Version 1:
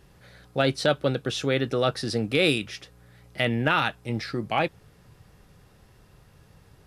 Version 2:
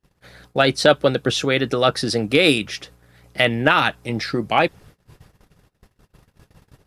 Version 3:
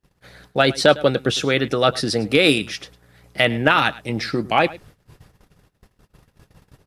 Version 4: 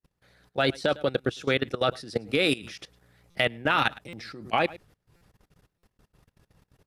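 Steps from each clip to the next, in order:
gate -52 dBFS, range -28 dB; harmonic-percussive split percussive +7 dB; trim +2 dB
delay 105 ms -19.5 dB
level held to a coarse grid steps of 19 dB; buffer glitch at 3.30/4.08/5.16/5.78 s, samples 256, times 8; trim -3.5 dB

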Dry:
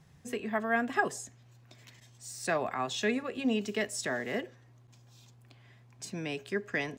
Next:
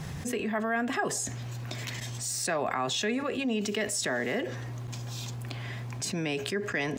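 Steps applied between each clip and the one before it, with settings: level flattener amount 70%; trim -3.5 dB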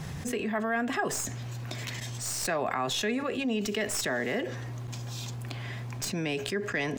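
tracing distortion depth 0.028 ms

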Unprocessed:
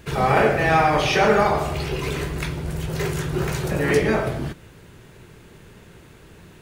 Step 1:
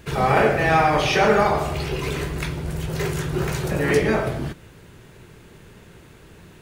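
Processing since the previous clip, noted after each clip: no audible change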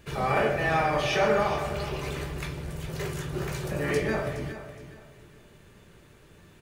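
feedback comb 590 Hz, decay 0.18 s, harmonics all, mix 70%; feedback delay 418 ms, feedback 29%, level -12.5 dB; trim +1.5 dB

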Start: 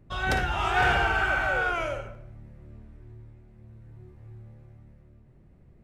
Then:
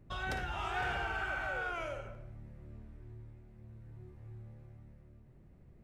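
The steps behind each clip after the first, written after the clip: compression 2:1, threshold -37 dBFS, peak gain reduction 10 dB; trim -3.5 dB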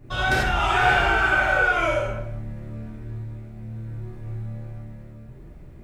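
gated-style reverb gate 120 ms flat, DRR -7.5 dB; trim +8.5 dB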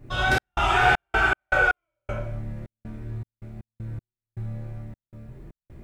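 trance gate "xx.xx.x.x..x" 79 bpm -60 dB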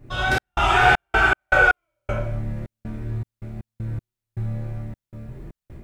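level rider gain up to 5.5 dB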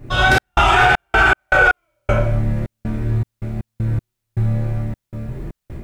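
loudness maximiser +12 dB; trim -3 dB

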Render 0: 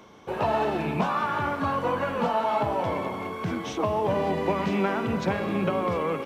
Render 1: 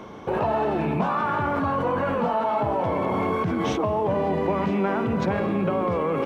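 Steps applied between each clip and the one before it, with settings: treble shelf 2.4 kHz -11.5 dB; in parallel at +2 dB: compressor with a negative ratio -35 dBFS, ratio -1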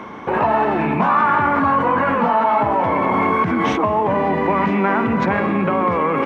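graphic EQ 250/1000/2000 Hz +7/+8/+11 dB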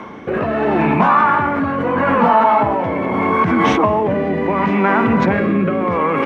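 rotary cabinet horn 0.75 Hz; trim +4.5 dB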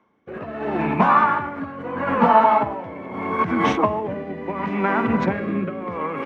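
upward expansion 2.5:1, over -31 dBFS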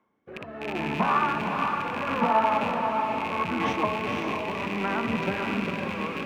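rattle on loud lows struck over -33 dBFS, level -15 dBFS; echo that smears into a reverb 513 ms, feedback 41%, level -3.5 dB; trim -8 dB

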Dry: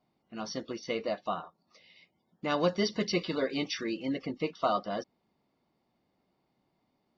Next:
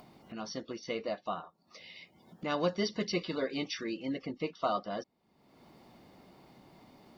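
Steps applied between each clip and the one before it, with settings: upward compressor, threshold -36 dBFS; trim -3 dB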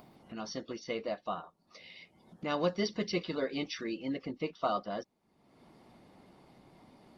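Opus 32 kbps 48 kHz

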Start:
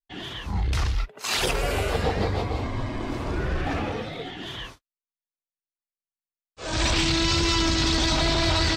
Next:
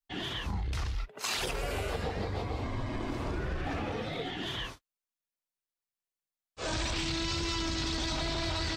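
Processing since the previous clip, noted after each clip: compression 6:1, threshold -31 dBFS, peak gain reduction 11 dB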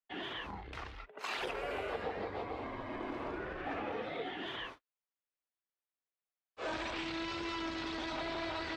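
three-band isolator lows -16 dB, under 260 Hz, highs -18 dB, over 3.1 kHz; trim -1.5 dB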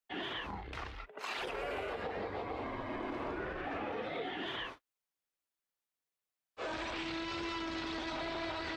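peak limiter -32 dBFS, peak gain reduction 6.5 dB; trim +2 dB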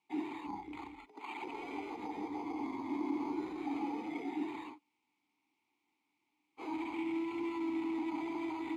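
careless resampling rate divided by 8×, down filtered, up hold; word length cut 12-bit, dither triangular; vowel filter u; trim +11.5 dB

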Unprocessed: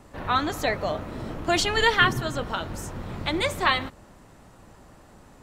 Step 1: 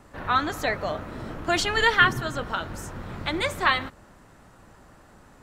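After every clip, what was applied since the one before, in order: peaking EQ 1.5 kHz +5 dB 0.81 oct; trim -2 dB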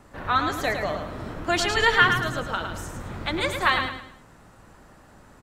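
feedback delay 108 ms, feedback 35%, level -6.5 dB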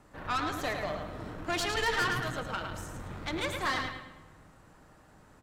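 valve stage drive 21 dB, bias 0.6; simulated room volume 2400 m³, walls mixed, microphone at 0.51 m; trim -4 dB

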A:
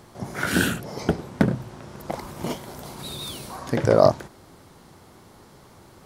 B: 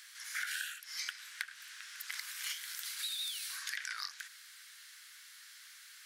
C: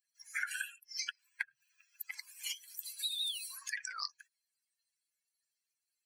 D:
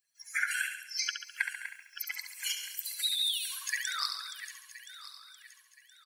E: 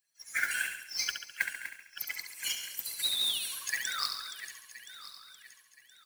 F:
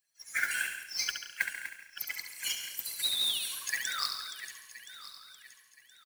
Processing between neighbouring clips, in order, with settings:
elliptic high-pass 1.6 kHz, stop band 60 dB; compression 20:1, threshold -40 dBFS, peak gain reduction 20 dB; trim +4.5 dB
expander on every frequency bin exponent 3; trim +7 dB
backward echo that repeats 511 ms, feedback 55%, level -11 dB; on a send: feedback delay 69 ms, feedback 56%, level -7.5 dB; on the sum: trim +5.5 dB
modulation noise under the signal 13 dB
delay 170 ms -15.5 dB

